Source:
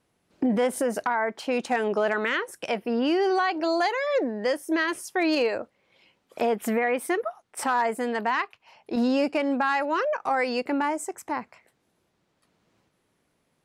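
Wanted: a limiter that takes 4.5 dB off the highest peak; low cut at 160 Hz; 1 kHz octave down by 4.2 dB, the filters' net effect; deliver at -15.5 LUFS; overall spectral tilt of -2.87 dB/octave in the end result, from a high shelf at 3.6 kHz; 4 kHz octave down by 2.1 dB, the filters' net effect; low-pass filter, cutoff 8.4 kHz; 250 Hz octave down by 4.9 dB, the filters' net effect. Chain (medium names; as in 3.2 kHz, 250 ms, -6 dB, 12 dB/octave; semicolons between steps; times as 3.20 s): high-pass 160 Hz; low-pass 8.4 kHz; peaking EQ 250 Hz -5 dB; peaking EQ 1 kHz -5.5 dB; treble shelf 3.6 kHz +7.5 dB; peaking EQ 4 kHz -7.5 dB; trim +15 dB; peak limiter -5.5 dBFS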